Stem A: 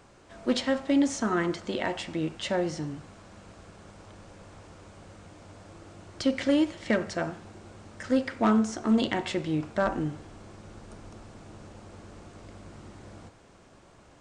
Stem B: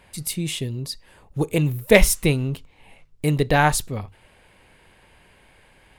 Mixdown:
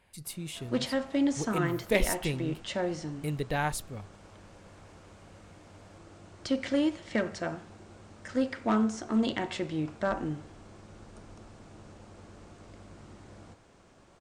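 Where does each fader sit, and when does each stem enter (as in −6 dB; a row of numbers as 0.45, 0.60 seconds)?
−3.5, −12.5 decibels; 0.25, 0.00 seconds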